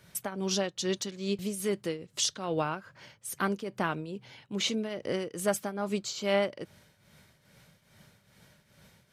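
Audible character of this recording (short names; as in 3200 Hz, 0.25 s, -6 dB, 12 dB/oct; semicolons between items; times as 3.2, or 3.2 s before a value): tremolo triangle 2.4 Hz, depth 75%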